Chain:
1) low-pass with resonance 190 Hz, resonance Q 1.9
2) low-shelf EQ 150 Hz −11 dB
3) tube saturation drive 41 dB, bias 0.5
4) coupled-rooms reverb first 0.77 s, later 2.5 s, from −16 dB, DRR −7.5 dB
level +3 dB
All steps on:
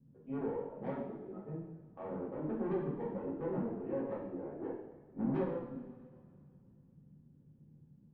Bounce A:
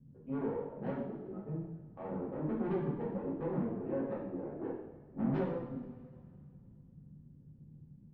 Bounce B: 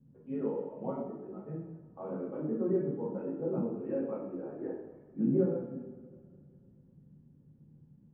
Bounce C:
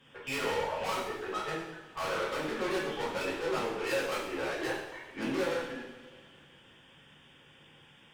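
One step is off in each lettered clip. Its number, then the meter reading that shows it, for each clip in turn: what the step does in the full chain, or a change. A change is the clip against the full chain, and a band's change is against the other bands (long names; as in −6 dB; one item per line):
2, 125 Hz band +2.5 dB
3, change in crest factor +2.5 dB
1, 2 kHz band +20.0 dB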